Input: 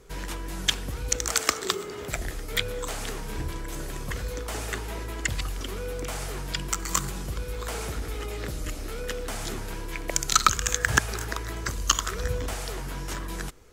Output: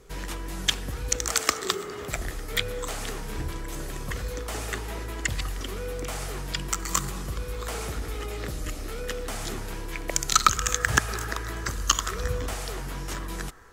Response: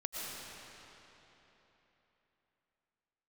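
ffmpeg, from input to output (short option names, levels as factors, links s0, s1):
-filter_complex "[0:a]asplit=2[s0][s1];[s1]asuperpass=centerf=1200:order=20:qfactor=0.93[s2];[1:a]atrim=start_sample=2205[s3];[s2][s3]afir=irnorm=-1:irlink=0,volume=0.2[s4];[s0][s4]amix=inputs=2:normalize=0"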